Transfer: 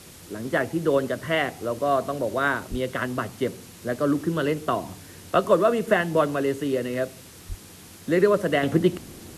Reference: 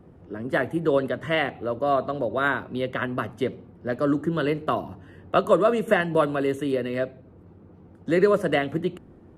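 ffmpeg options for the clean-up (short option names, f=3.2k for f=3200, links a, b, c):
-filter_complex "[0:a]asplit=3[a][b][c];[a]afade=t=out:st=2.7:d=0.02[d];[b]highpass=f=140:w=0.5412,highpass=f=140:w=1.3066,afade=t=in:st=2.7:d=0.02,afade=t=out:st=2.82:d=0.02[e];[c]afade=t=in:st=2.82:d=0.02[f];[d][e][f]amix=inputs=3:normalize=0,asplit=3[g][h][i];[g]afade=t=out:st=7.48:d=0.02[j];[h]highpass=f=140:w=0.5412,highpass=f=140:w=1.3066,afade=t=in:st=7.48:d=0.02,afade=t=out:st=7.6:d=0.02[k];[i]afade=t=in:st=7.6:d=0.02[l];[j][k][l]amix=inputs=3:normalize=0,afwtdn=0.005,asetnsamples=n=441:p=0,asendcmd='8.63 volume volume -6.5dB',volume=0dB"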